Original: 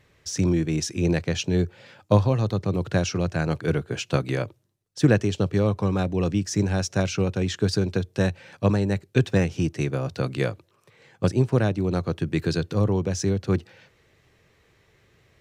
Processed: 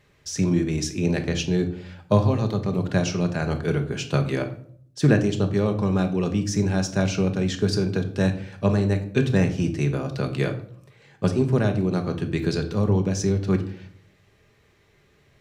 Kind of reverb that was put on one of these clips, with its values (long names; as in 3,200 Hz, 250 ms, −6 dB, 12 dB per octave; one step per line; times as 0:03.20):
rectangular room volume 830 cubic metres, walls furnished, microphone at 1.3 metres
level −1 dB